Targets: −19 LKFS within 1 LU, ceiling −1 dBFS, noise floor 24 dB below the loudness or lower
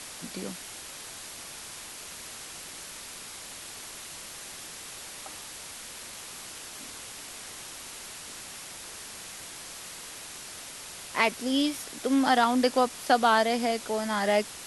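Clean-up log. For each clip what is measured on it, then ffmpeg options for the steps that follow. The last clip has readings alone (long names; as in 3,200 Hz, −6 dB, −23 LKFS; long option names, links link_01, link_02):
background noise floor −43 dBFS; target noise floor −55 dBFS; integrated loudness −31.0 LKFS; sample peak −8.5 dBFS; target loudness −19.0 LKFS
→ -af "afftdn=noise_reduction=12:noise_floor=-43"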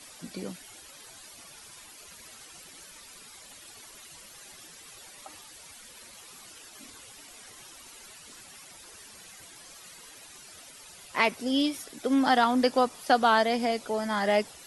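background noise floor −50 dBFS; integrated loudness −26.0 LKFS; sample peak −8.5 dBFS; target loudness −19.0 LKFS
→ -af "volume=7dB"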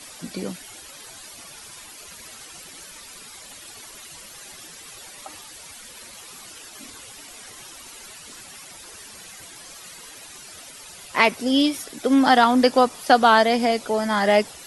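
integrated loudness −19.0 LKFS; sample peak −1.5 dBFS; background noise floor −43 dBFS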